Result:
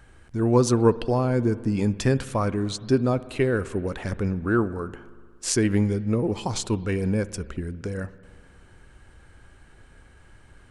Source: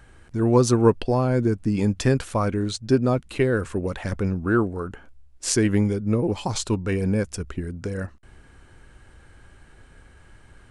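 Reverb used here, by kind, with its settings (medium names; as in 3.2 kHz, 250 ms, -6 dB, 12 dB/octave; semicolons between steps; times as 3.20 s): spring tank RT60 1.9 s, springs 59 ms, chirp 65 ms, DRR 16.5 dB; trim -1.5 dB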